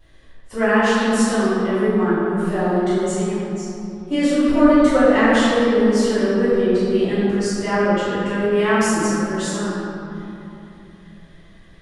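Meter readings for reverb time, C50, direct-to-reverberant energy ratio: 3.0 s, -5.0 dB, -17.0 dB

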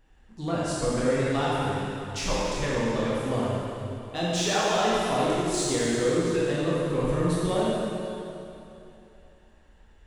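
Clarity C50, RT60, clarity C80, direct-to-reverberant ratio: -4.0 dB, 2.9 s, -2.5 dB, -7.5 dB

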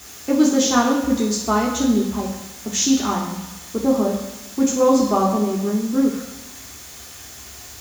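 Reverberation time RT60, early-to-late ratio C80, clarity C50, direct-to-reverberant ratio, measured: 1.0 s, 7.0 dB, 4.5 dB, -3.0 dB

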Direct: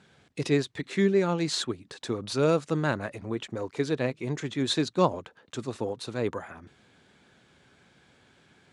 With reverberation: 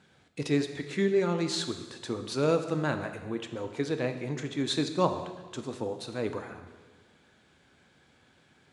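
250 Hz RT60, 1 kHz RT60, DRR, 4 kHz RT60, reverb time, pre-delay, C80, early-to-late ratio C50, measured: 1.4 s, 1.4 s, 6.5 dB, 1.4 s, 1.4 s, 3 ms, 11.0 dB, 9.0 dB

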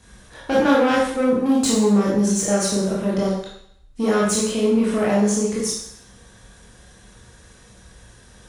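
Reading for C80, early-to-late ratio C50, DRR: 4.5 dB, 1.5 dB, -6.0 dB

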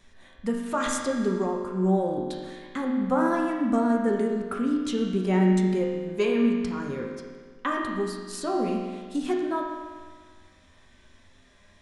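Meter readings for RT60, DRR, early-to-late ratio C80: 1.6 s, -2.0 dB, 3.5 dB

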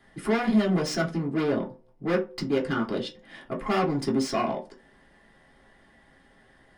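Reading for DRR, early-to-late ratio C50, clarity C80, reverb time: -3.5 dB, 13.0 dB, 20.0 dB, no single decay rate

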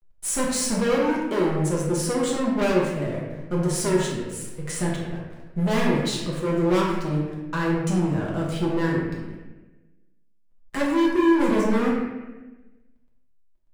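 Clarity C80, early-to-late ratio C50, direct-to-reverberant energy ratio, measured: 3.5 dB, 1.0 dB, -5.0 dB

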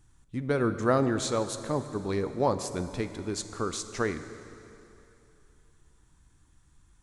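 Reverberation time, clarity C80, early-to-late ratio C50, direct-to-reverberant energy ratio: 2.9 s, 11.5 dB, 11.0 dB, 10.0 dB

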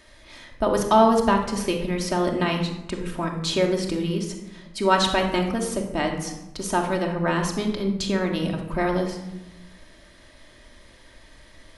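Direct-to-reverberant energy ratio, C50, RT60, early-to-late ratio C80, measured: 1.0 dB, 6.0 dB, 0.95 s, 9.0 dB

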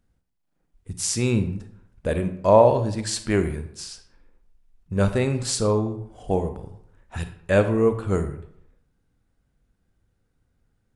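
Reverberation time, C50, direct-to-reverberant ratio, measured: 0.70 s, 11.0 dB, 9.0 dB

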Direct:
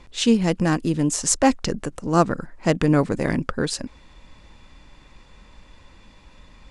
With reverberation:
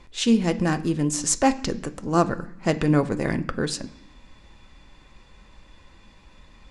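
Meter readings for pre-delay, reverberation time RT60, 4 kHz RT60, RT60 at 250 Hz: 3 ms, 0.65 s, 0.85 s, 0.90 s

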